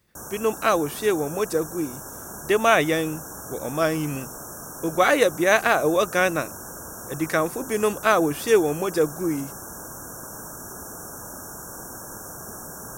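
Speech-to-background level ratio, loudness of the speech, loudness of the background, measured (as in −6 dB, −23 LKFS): 13.5 dB, −22.5 LKFS, −36.0 LKFS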